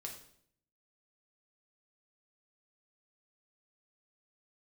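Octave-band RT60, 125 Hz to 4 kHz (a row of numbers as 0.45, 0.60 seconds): 0.90, 0.80, 0.70, 0.60, 0.55, 0.55 seconds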